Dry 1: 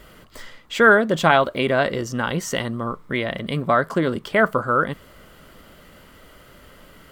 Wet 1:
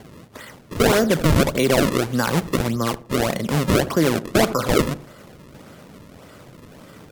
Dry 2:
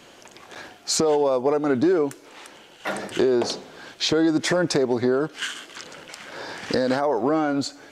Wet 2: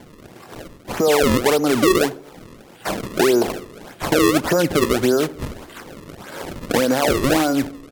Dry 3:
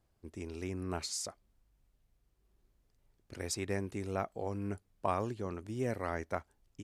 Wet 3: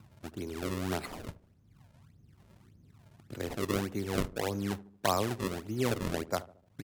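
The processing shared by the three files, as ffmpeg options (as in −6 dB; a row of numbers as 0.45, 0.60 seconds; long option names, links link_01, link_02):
-filter_complex "[0:a]highpass=frequency=91:width=0.5412,highpass=frequency=91:width=1.3066,acrossover=split=6900[link_01][link_02];[link_02]acompressor=threshold=-49dB:ratio=4:attack=1:release=60[link_03];[link_01][link_03]amix=inputs=2:normalize=0,highshelf=frequency=3500:gain=-9.5,acrossover=split=260|1700|2400[link_04][link_05][link_06][link_07];[link_04]acompressor=mode=upward:threshold=-45dB:ratio=2.5[link_08];[link_08][link_05][link_06][link_07]amix=inputs=4:normalize=0,acrusher=samples=33:mix=1:aa=0.000001:lfo=1:lforange=52.8:lforate=1.7,asplit=2[link_09][link_10];[link_10]adelay=75,lowpass=frequency=850:poles=1,volume=-16dB,asplit=2[link_11][link_12];[link_12]adelay=75,lowpass=frequency=850:poles=1,volume=0.51,asplit=2[link_13][link_14];[link_14]adelay=75,lowpass=frequency=850:poles=1,volume=0.51,asplit=2[link_15][link_16];[link_16]adelay=75,lowpass=frequency=850:poles=1,volume=0.51,asplit=2[link_17][link_18];[link_18]adelay=75,lowpass=frequency=850:poles=1,volume=0.51[link_19];[link_09][link_11][link_13][link_15][link_17][link_19]amix=inputs=6:normalize=0,alimiter=level_in=12dB:limit=-1dB:release=50:level=0:latency=1,volume=-7dB" -ar 44100 -c:a libmp3lame -b:a 80k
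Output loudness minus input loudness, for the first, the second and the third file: +0.5, +4.5, +4.0 LU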